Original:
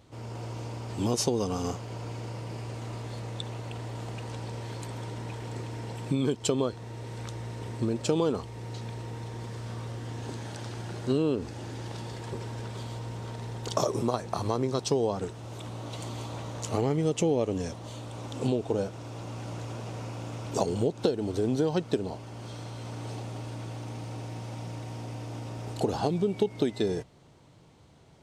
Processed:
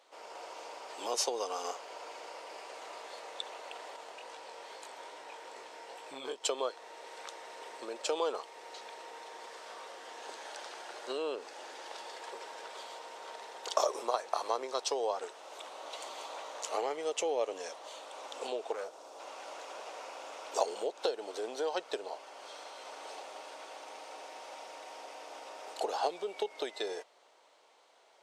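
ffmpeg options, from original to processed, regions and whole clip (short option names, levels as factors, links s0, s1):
-filter_complex "[0:a]asettb=1/sr,asplit=3[s0][s1][s2];[s0]atrim=end=3.964[s3];[s1]atrim=start=3.96:end=6.43,asetpts=PTS-STARTPTS,afade=t=in:d=0.004:c=qsin,afade=t=out:st=2.466:d=0.004:c=qsin,equalizer=f=130:w=1.2:g=6,flanger=delay=19:depth=4.6:speed=2.4,asoftclip=type=hard:threshold=0.126[s4];[s2]atrim=start=6.426[s5];[s3][s4]acrossfade=d=0.004:c1=hsin:c2=qsin[s6];[s6][s5]acrossfade=d=0.004:c1=qsin:c2=hsin,asettb=1/sr,asplit=3[s7][s8][s9];[s7]atrim=end=18.724[s10];[s8]atrim=start=18.72:end=19.2,asetpts=PTS-STARTPTS,afade=t=in:d=0.004:c=qsin,afade=t=out:st=0.476:d=0.004:c=qsin,equalizer=f=2200:t=o:w=1.7:g=-10,asoftclip=type=hard:threshold=0.0299[s11];[s9]atrim=start=19.196[s12];[s10][s11]acrossfade=d=0.004:c1=hsin:c2=qsin[s13];[s13][s12]acrossfade=d=0.004:c1=qsin:c2=hsin,highpass=f=530:w=0.5412,highpass=f=530:w=1.3066,highshelf=f=8600:g=-6.5"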